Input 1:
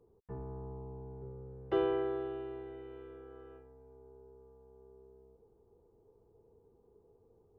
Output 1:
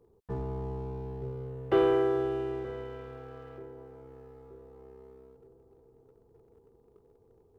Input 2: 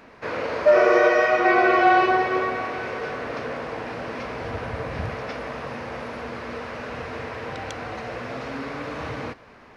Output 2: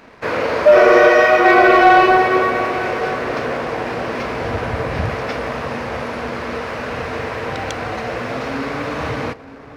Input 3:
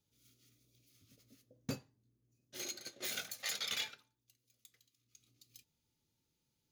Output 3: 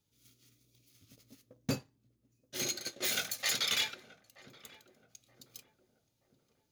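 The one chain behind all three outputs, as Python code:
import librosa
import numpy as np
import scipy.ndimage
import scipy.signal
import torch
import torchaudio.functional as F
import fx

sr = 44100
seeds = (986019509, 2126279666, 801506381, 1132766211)

y = fx.leveller(x, sr, passes=1)
y = fx.echo_filtered(y, sr, ms=927, feedback_pct=50, hz=830.0, wet_db=-14.5)
y = y * 10.0 ** (4.5 / 20.0)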